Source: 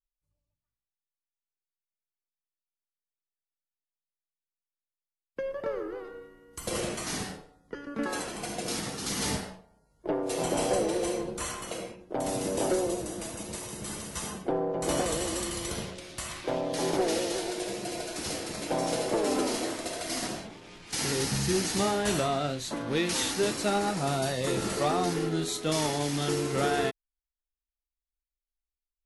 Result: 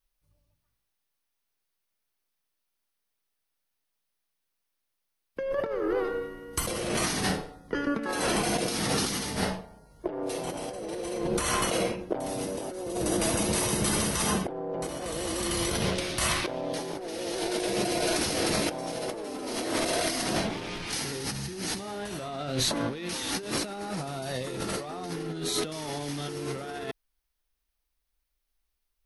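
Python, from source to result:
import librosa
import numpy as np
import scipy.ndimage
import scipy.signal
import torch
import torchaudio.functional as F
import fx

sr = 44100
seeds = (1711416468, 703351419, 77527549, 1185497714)

y = fx.peak_eq(x, sr, hz=7300.0, db=-9.0, octaves=0.21)
y = fx.over_compress(y, sr, threshold_db=-38.0, ratio=-1.0)
y = y * librosa.db_to_amplitude(6.5)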